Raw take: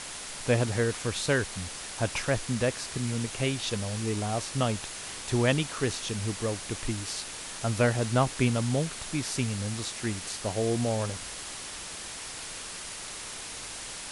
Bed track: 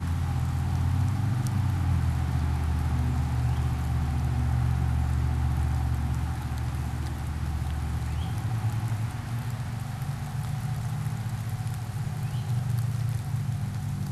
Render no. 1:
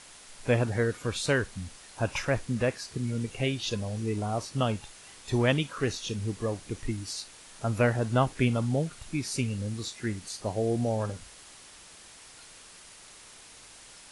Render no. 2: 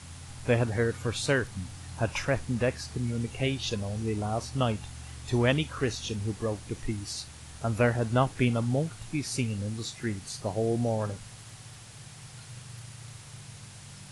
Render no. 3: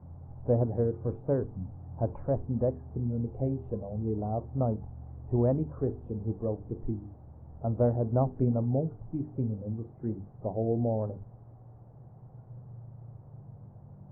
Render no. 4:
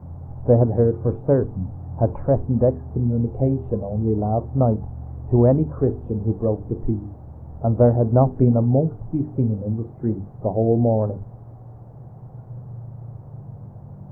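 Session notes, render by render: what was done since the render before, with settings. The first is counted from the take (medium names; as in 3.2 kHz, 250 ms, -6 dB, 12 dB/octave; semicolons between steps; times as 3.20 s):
noise print and reduce 11 dB
add bed track -18 dB
inverse Chebyshev low-pass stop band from 4.4 kHz, stop band 80 dB; hum notches 50/100/150/200/250/300/350/400/450 Hz
trim +10.5 dB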